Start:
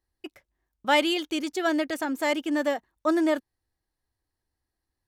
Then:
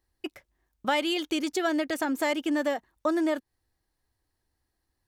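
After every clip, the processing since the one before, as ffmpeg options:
ffmpeg -i in.wav -af "acompressor=threshold=-30dB:ratio=3,volume=4.5dB" out.wav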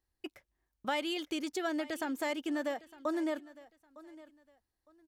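ffmpeg -i in.wav -af "aecho=1:1:908|1816:0.106|0.0265,volume=-7.5dB" out.wav

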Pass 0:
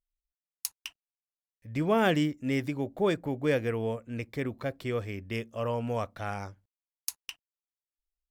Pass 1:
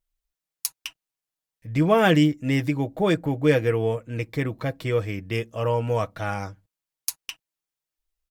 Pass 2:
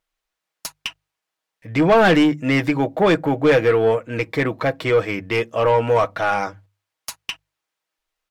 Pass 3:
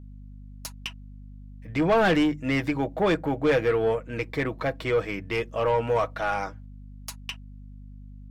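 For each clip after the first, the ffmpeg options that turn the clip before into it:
ffmpeg -i in.wav -af "equalizer=frequency=99:width_type=o:width=0.7:gain=4,aecho=1:1:6.3:0.52,volume=5.5dB" out.wav
ffmpeg -i in.wav -filter_complex "[0:a]asplit=2[link_01][link_02];[link_02]highpass=frequency=720:poles=1,volume=21dB,asoftclip=type=tanh:threshold=-5dB[link_03];[link_01][link_03]amix=inputs=2:normalize=0,lowpass=frequency=1900:poles=1,volume=-6dB,bandreject=frequency=50:width_type=h:width=6,bandreject=frequency=100:width_type=h:width=6,bandreject=frequency=150:width_type=h:width=6" out.wav
ffmpeg -i in.wav -af "aeval=exprs='val(0)+0.0178*(sin(2*PI*50*n/s)+sin(2*PI*2*50*n/s)/2+sin(2*PI*3*50*n/s)/3+sin(2*PI*4*50*n/s)/4+sin(2*PI*5*50*n/s)/5)':channel_layout=same,volume=-7dB" out.wav

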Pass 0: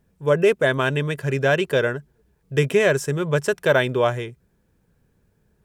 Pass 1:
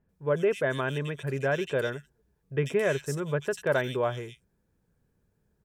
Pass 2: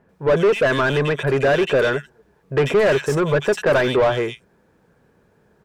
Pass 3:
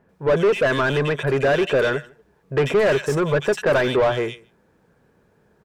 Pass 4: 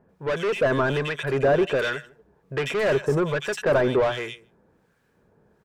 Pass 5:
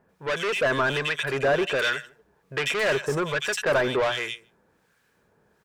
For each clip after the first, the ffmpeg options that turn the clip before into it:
ffmpeg -i in.wav -filter_complex "[0:a]acrossover=split=2700[link_01][link_02];[link_02]adelay=90[link_03];[link_01][link_03]amix=inputs=2:normalize=0,volume=-8dB" out.wav
ffmpeg -i in.wav -filter_complex "[0:a]asplit=2[link_01][link_02];[link_02]highpass=frequency=720:poles=1,volume=25dB,asoftclip=type=tanh:threshold=-13.5dB[link_03];[link_01][link_03]amix=inputs=2:normalize=0,lowpass=frequency=1200:poles=1,volume=-6dB,volume=6dB" out.wav
ffmpeg -i in.wav -filter_complex "[0:a]asplit=2[link_01][link_02];[link_02]adelay=151.6,volume=-25dB,highshelf=frequency=4000:gain=-3.41[link_03];[link_01][link_03]amix=inputs=2:normalize=0,volume=-1.5dB" out.wav
ffmpeg -i in.wav -filter_complex "[0:a]acrossover=split=1300[link_01][link_02];[link_01]aeval=exprs='val(0)*(1-0.7/2+0.7/2*cos(2*PI*1.3*n/s))':channel_layout=same[link_03];[link_02]aeval=exprs='val(0)*(1-0.7/2-0.7/2*cos(2*PI*1.3*n/s))':channel_layout=same[link_04];[link_03][link_04]amix=inputs=2:normalize=0" out.wav
ffmpeg -i in.wav -af "tiltshelf=frequency=970:gain=-6" out.wav

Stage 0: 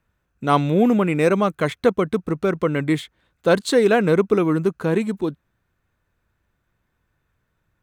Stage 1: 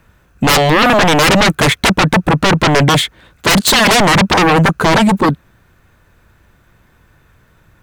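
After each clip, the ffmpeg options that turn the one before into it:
ffmpeg -i in.wav -af "aeval=exprs='0.631*sin(PI/2*8.91*val(0)/0.631)':channel_layout=same,volume=-2.5dB" out.wav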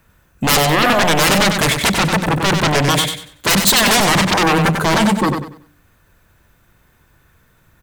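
ffmpeg -i in.wav -af "aecho=1:1:95|190|285|380:0.501|0.14|0.0393|0.011,crystalizer=i=1:c=0,bandreject=frequency=58.94:width_type=h:width=4,bandreject=frequency=117.88:width_type=h:width=4,bandreject=frequency=176.82:width_type=h:width=4,bandreject=frequency=235.76:width_type=h:width=4,bandreject=frequency=294.7:width_type=h:width=4,bandreject=frequency=353.64:width_type=h:width=4,bandreject=frequency=412.58:width_type=h:width=4,bandreject=frequency=471.52:width_type=h:width=4,bandreject=frequency=530.46:width_type=h:width=4,bandreject=frequency=589.4:width_type=h:width=4,volume=-5dB" out.wav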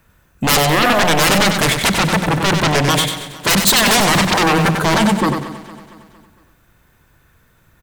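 ffmpeg -i in.wav -af "aecho=1:1:229|458|687|916|1145:0.158|0.0824|0.0429|0.0223|0.0116" out.wav

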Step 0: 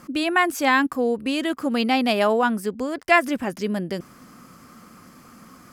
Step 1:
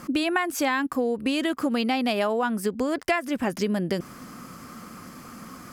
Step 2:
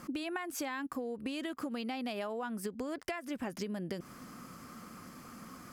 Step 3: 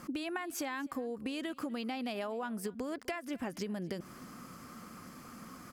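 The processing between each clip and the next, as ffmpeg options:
ffmpeg -i in.wav -af "acompressor=threshold=-26dB:ratio=10,volume=5dB" out.wav
ffmpeg -i in.wav -af "acompressor=threshold=-27dB:ratio=6,volume=-7.5dB" out.wav
ffmpeg -i in.wav -af "aecho=1:1:250:0.075" out.wav

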